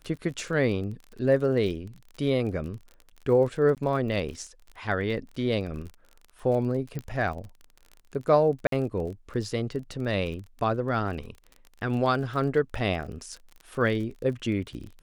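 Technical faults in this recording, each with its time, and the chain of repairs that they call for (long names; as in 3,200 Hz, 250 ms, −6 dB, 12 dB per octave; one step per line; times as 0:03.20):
surface crackle 31 per second −36 dBFS
0:03.75–0:03.77: drop-out 18 ms
0:06.99: click −22 dBFS
0:08.67–0:08.72: drop-out 53 ms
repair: click removal
repair the gap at 0:03.75, 18 ms
repair the gap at 0:08.67, 53 ms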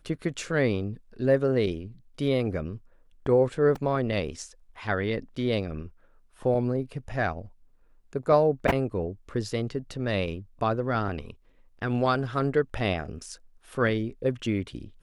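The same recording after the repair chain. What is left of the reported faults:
0:06.99: click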